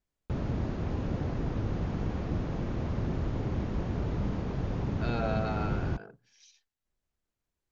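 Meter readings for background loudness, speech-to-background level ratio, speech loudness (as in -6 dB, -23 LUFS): -33.5 LUFS, -3.0 dB, -36.5 LUFS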